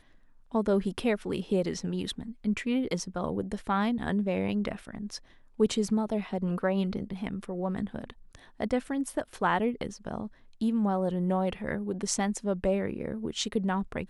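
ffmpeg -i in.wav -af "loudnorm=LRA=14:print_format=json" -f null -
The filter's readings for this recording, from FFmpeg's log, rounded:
"input_i" : "-30.7",
"input_tp" : "-11.6",
"input_lra" : "2.1",
"input_thresh" : "-40.9",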